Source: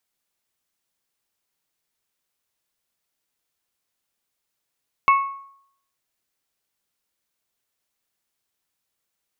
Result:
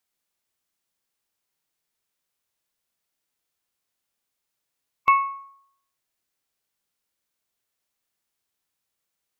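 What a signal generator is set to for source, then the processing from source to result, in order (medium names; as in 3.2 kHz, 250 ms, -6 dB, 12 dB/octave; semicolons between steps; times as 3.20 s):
glass hit bell, lowest mode 1.1 kHz, modes 3, decay 0.67 s, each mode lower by 8 dB, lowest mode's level -10 dB
harmonic-percussive split percussive -4 dB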